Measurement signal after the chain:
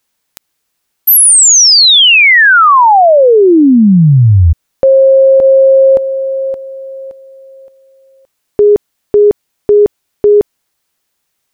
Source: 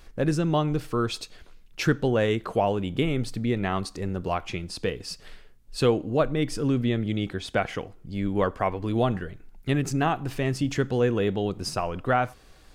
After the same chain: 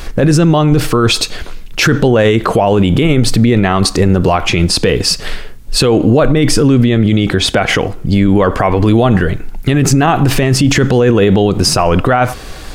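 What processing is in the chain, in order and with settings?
in parallel at +1.5 dB: compressor whose output falls as the input rises −26 dBFS
on the sum: boost into a limiter +18 dB
level −1 dB

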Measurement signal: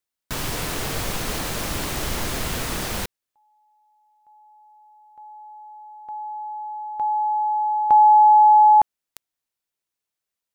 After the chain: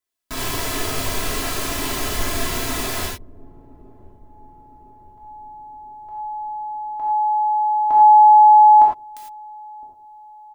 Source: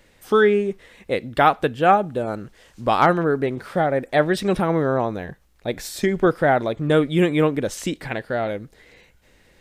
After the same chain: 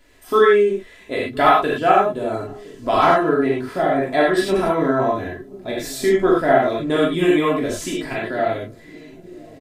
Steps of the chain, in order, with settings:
comb filter 3 ms, depth 56%
on a send: delay with a low-pass on its return 1,013 ms, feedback 54%, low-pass 420 Hz, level −17.5 dB
on the sum: reverb whose tail is shaped and stops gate 130 ms flat, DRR −5 dB
level −4.5 dB

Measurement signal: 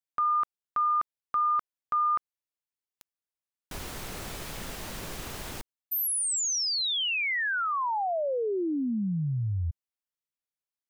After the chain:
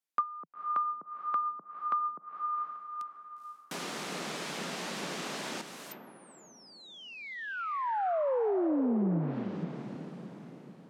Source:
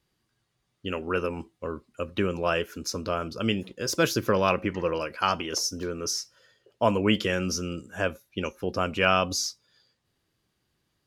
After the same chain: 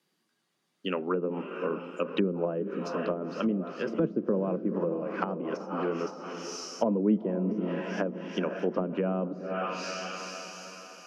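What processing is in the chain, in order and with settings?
Butterworth high-pass 160 Hz 48 dB per octave
feedback delay with all-pass diffusion 481 ms, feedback 46%, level −9 dB
treble cut that deepens with the level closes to 400 Hz, closed at −23 dBFS
in parallel at +1 dB: speech leveller within 3 dB 2 s
on the sum: level −5.5 dB

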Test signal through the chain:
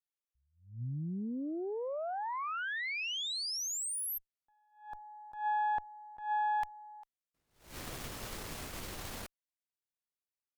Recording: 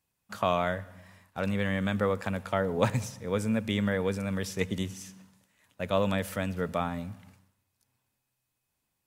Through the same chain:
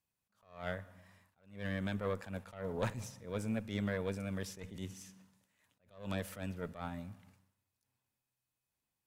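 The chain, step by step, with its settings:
tube saturation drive 20 dB, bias 0.7
level that may rise only so fast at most 130 dB per second
level −4.5 dB

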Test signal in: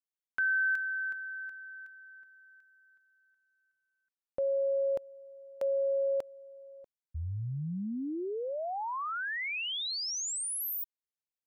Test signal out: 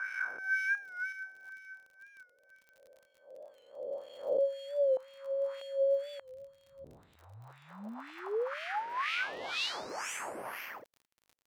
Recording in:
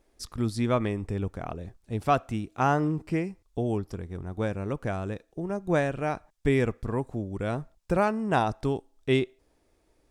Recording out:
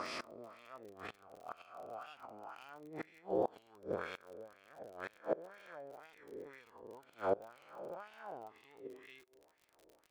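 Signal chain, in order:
peak hold with a rise ahead of every peak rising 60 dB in 2.81 s
high-shelf EQ 4,700 Hz −4.5 dB
in parallel at −6 dB: sample-rate reduction 3,800 Hz, jitter 0%
on the sum: gate with flip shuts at −14 dBFS, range −24 dB
LFO wah 2 Hz 460–2,700 Hz, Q 2.1
surface crackle 41 per second −49 dBFS
wow of a warped record 45 rpm, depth 100 cents

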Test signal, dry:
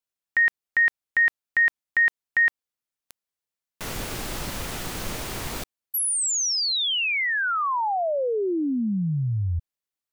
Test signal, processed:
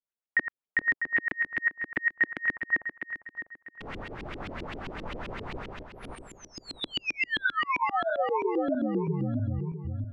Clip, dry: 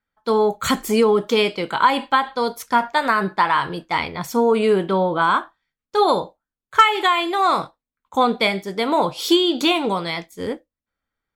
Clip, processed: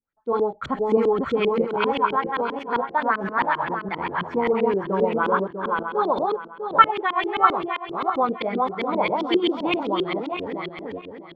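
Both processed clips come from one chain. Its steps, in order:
feedback delay that plays each chunk backwards 324 ms, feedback 50%, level −1.5 dB
auto-filter low-pass saw up 7.6 Hz 280–3,200 Hz
level −8.5 dB

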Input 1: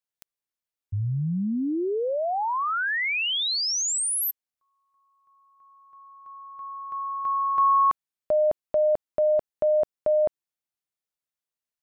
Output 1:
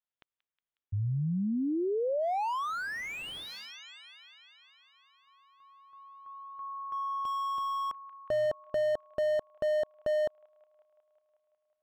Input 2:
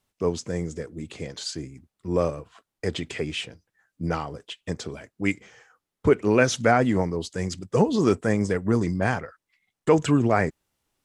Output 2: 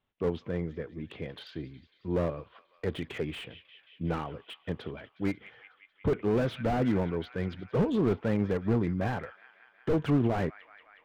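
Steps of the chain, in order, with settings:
Chebyshev low-pass filter 3,400 Hz, order 4
delay with a high-pass on its return 182 ms, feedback 75%, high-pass 1,700 Hz, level −18 dB
slew-rate limiting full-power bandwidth 40 Hz
level −3 dB

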